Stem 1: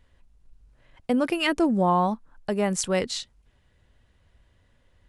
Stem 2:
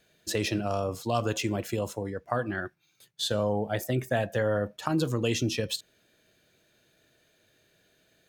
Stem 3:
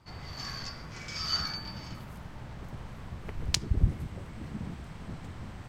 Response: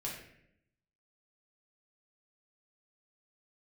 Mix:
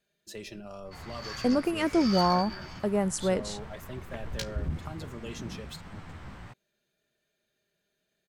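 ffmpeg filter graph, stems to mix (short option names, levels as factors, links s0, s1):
-filter_complex "[0:a]equalizer=f=3200:t=o:w=2.3:g=-9,adelay=350,volume=0.841[s0];[1:a]aecho=1:1:5:0.52,volume=0.2[s1];[2:a]equalizer=f=1500:w=0.57:g=5.5,flanger=delay=9.4:depth=8.3:regen=25:speed=0.98:shape=triangular,asoftclip=type=tanh:threshold=0.0668,adelay=850,volume=1.06[s2];[s0][s1][s2]amix=inputs=3:normalize=0"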